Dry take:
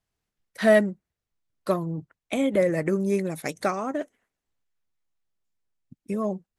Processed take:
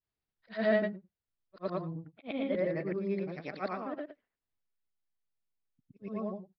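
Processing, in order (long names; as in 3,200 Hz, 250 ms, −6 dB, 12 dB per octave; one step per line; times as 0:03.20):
every overlapping window played backwards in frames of 232 ms
downsampling to 11,025 Hz
level −6 dB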